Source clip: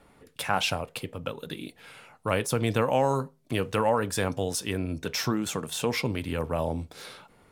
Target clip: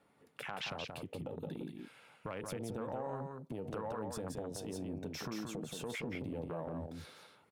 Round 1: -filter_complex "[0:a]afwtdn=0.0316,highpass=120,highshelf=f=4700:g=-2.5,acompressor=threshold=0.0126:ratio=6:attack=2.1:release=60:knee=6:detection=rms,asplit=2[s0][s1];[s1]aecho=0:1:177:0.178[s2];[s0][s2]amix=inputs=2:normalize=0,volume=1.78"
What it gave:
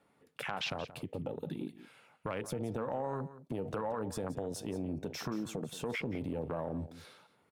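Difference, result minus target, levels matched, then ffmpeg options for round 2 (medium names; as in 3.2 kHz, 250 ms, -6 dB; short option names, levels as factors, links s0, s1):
echo-to-direct -10.5 dB; compression: peak gain reduction -5 dB
-filter_complex "[0:a]afwtdn=0.0316,highpass=120,highshelf=f=4700:g=-2.5,acompressor=threshold=0.00631:ratio=6:attack=2.1:release=60:knee=6:detection=rms,asplit=2[s0][s1];[s1]aecho=0:1:177:0.596[s2];[s0][s2]amix=inputs=2:normalize=0,volume=1.78"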